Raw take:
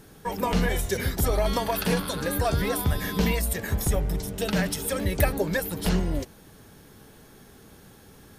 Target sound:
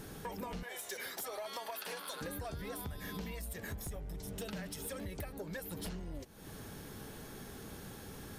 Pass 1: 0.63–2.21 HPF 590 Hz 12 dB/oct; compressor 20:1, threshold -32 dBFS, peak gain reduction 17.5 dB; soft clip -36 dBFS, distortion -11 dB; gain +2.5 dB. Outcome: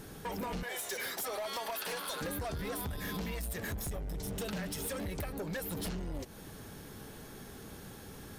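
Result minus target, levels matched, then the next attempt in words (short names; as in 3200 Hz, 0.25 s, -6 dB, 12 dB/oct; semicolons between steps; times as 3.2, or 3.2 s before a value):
compressor: peak gain reduction -7.5 dB
0.63–2.21 HPF 590 Hz 12 dB/oct; compressor 20:1, threshold -40 dBFS, peak gain reduction 25 dB; soft clip -36 dBFS, distortion -19 dB; gain +2.5 dB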